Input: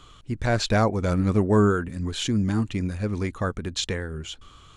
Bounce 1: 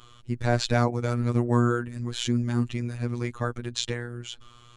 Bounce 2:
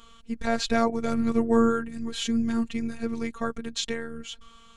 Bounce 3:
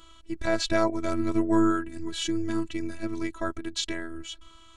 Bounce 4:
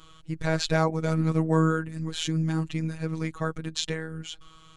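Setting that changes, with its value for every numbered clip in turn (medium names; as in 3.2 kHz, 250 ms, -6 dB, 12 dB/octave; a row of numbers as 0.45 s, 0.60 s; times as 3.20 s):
robot voice, frequency: 120 Hz, 230 Hz, 330 Hz, 160 Hz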